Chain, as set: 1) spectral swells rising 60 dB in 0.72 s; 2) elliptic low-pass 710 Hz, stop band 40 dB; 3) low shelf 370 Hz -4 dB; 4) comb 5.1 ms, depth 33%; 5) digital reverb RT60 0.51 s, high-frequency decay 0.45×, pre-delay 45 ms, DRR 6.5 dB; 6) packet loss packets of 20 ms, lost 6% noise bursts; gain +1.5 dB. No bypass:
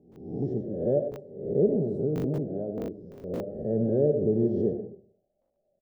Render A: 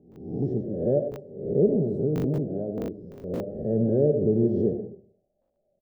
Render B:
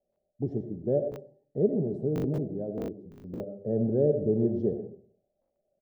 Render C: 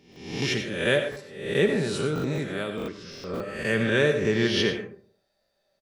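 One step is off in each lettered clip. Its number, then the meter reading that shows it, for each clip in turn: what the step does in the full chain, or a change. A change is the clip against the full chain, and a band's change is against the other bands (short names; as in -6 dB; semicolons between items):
3, 125 Hz band +2.0 dB; 1, momentary loudness spread change +2 LU; 2, 1 kHz band +8.5 dB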